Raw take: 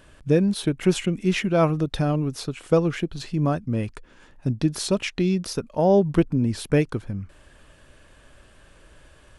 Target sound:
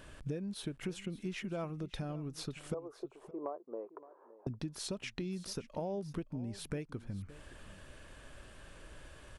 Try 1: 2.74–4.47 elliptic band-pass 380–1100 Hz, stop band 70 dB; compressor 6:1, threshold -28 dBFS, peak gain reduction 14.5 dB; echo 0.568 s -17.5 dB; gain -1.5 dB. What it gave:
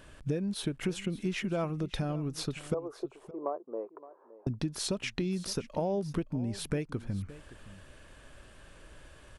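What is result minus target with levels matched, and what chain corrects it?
compressor: peak gain reduction -7 dB
2.74–4.47 elliptic band-pass 380–1100 Hz, stop band 70 dB; compressor 6:1, threshold -36.5 dBFS, peak gain reduction 21.5 dB; echo 0.568 s -17.5 dB; gain -1.5 dB

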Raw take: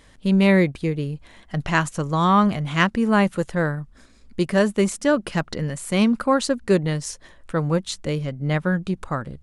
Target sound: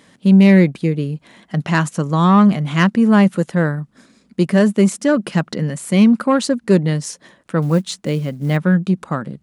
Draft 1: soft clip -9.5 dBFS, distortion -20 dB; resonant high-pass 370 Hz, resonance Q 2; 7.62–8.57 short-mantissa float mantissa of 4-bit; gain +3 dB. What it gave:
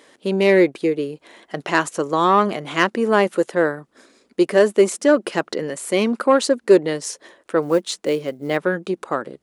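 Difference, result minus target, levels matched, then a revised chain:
500 Hz band +7.0 dB
soft clip -9.5 dBFS, distortion -20 dB; resonant high-pass 180 Hz, resonance Q 2; 7.62–8.57 short-mantissa float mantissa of 4-bit; gain +3 dB

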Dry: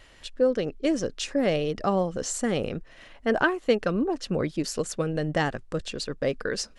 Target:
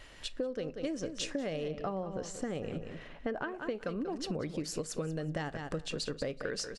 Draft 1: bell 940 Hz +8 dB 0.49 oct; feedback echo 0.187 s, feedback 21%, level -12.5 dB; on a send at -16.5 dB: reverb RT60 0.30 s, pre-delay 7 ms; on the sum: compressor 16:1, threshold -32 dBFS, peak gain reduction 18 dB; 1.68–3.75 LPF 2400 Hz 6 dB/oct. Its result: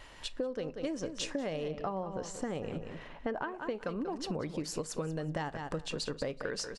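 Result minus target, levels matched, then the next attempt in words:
1000 Hz band +3.0 dB
feedback echo 0.187 s, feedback 21%, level -12.5 dB; on a send at -16.5 dB: reverb RT60 0.30 s, pre-delay 7 ms; on the sum: compressor 16:1, threshold -32 dBFS, peak gain reduction 16.5 dB; 1.68–3.75 LPF 2400 Hz 6 dB/oct

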